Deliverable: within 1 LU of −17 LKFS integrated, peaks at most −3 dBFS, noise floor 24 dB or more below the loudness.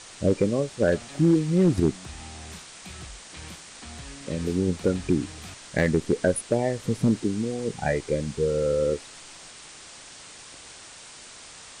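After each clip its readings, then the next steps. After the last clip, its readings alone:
share of clipped samples 0.2%; peaks flattened at −12.5 dBFS; background noise floor −45 dBFS; target noise floor −49 dBFS; integrated loudness −25.0 LKFS; sample peak −12.5 dBFS; target loudness −17.0 LKFS
→ clipped peaks rebuilt −12.5 dBFS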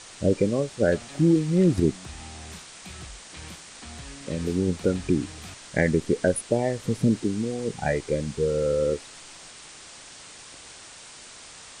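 share of clipped samples 0.0%; background noise floor −45 dBFS; target noise floor −49 dBFS
→ broadband denoise 6 dB, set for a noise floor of −45 dBFS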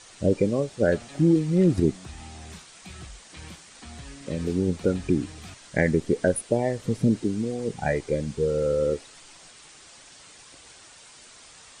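background noise floor −50 dBFS; integrated loudness −25.0 LKFS; sample peak −7.0 dBFS; target loudness −17.0 LKFS
→ level +8 dB
brickwall limiter −3 dBFS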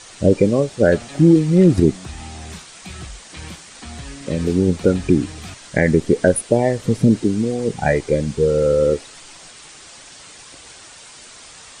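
integrated loudness −17.5 LKFS; sample peak −3.0 dBFS; background noise floor −42 dBFS

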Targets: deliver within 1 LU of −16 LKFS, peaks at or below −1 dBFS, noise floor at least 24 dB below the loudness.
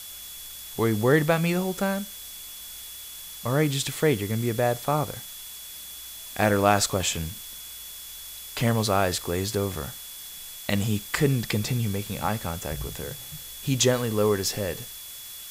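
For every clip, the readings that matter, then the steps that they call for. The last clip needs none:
interfering tone 3,400 Hz; level of the tone −45 dBFS; background noise floor −41 dBFS; target noise floor −50 dBFS; integrated loudness −26.0 LKFS; sample peak −6.0 dBFS; target loudness −16.0 LKFS
→ notch filter 3,400 Hz, Q 30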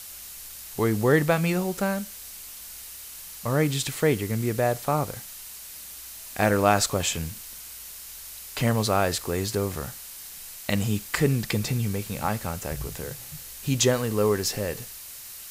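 interfering tone none found; background noise floor −42 dBFS; target noise floor −50 dBFS
→ broadband denoise 8 dB, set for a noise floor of −42 dBFS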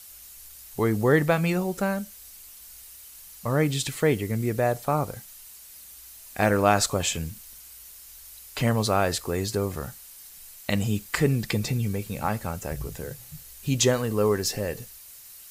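background noise floor −47 dBFS; target noise floor −50 dBFS
→ broadband denoise 6 dB, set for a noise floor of −47 dBFS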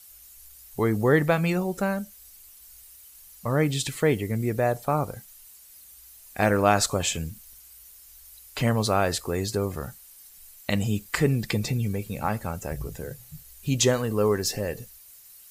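background noise floor −50 dBFS; integrated loudness −26.0 LKFS; sample peak −6.0 dBFS; target loudness −16.0 LKFS
→ level +10 dB
brickwall limiter −1 dBFS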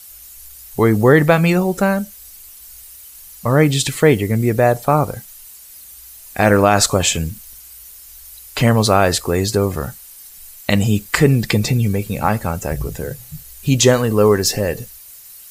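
integrated loudness −16.0 LKFS; sample peak −1.0 dBFS; background noise floor −40 dBFS

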